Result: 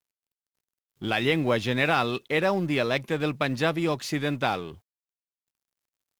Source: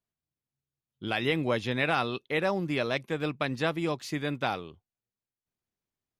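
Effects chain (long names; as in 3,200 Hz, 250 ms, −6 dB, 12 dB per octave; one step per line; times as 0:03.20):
mu-law and A-law mismatch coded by mu
level +3 dB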